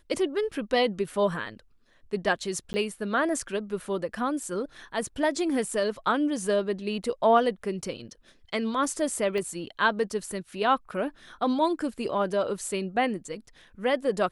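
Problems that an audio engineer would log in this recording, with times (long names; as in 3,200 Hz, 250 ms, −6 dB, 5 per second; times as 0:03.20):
0:02.73–0:02.74: drop-out 10 ms
0:09.38: click −21 dBFS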